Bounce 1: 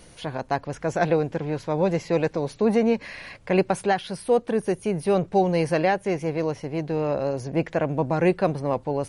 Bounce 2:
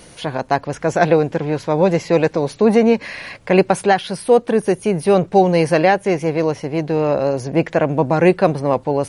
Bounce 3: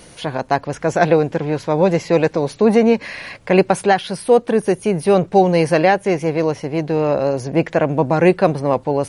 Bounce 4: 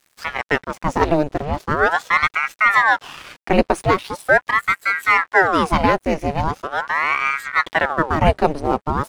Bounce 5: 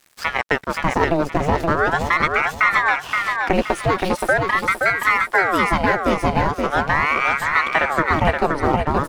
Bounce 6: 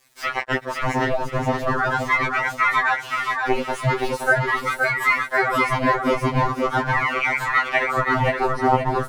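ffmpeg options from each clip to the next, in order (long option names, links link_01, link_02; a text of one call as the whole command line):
ffmpeg -i in.wav -af "lowshelf=frequency=71:gain=-9.5,volume=8dB" out.wav
ffmpeg -i in.wav -af anull out.wav
ffmpeg -i in.wav -af "aeval=exprs='sgn(val(0))*max(abs(val(0))-0.0133,0)':channel_layout=same,aeval=exprs='val(0)*sin(2*PI*970*n/s+970*0.85/0.41*sin(2*PI*0.41*n/s))':channel_layout=same,volume=1dB" out.wav
ffmpeg -i in.wav -filter_complex "[0:a]acompressor=threshold=-20dB:ratio=4,asplit=2[link_01][link_02];[link_02]aecho=0:1:523|1046|1569|2092:0.631|0.183|0.0531|0.0154[link_03];[link_01][link_03]amix=inputs=2:normalize=0,volume=4.5dB" out.wav
ffmpeg -i in.wav -af "afftfilt=real='re*2.45*eq(mod(b,6),0)':imag='im*2.45*eq(mod(b,6),0)':win_size=2048:overlap=0.75" out.wav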